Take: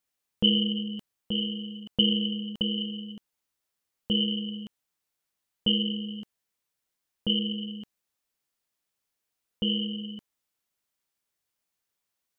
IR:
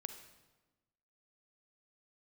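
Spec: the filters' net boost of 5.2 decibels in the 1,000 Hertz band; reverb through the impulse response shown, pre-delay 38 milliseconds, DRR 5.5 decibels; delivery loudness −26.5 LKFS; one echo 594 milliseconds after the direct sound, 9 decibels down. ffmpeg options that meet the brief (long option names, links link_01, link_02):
-filter_complex "[0:a]equalizer=frequency=1000:width_type=o:gain=7,aecho=1:1:594:0.355,asplit=2[link_01][link_02];[1:a]atrim=start_sample=2205,adelay=38[link_03];[link_02][link_03]afir=irnorm=-1:irlink=0,volume=-2.5dB[link_04];[link_01][link_04]amix=inputs=2:normalize=0,volume=0.5dB"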